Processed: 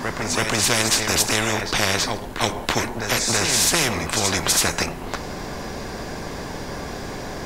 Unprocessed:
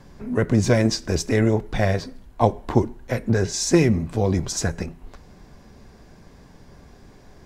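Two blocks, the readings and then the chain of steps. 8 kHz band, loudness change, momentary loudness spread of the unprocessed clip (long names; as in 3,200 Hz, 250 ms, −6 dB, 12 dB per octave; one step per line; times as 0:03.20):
+10.5 dB, +2.0 dB, 10 LU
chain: backwards echo 328 ms −14 dB
every bin compressed towards the loudest bin 4 to 1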